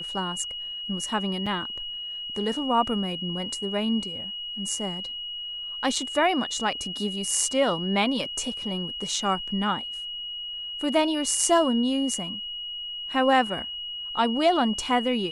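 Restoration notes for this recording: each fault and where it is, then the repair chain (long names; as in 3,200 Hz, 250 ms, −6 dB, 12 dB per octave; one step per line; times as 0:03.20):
whistle 2,900 Hz −32 dBFS
0:01.46–0:01.47: drop-out 5.4 ms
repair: notch filter 2,900 Hz, Q 30
repair the gap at 0:01.46, 5.4 ms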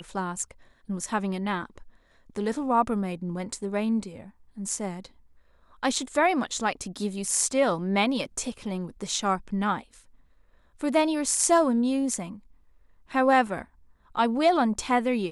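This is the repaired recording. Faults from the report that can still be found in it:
none of them is left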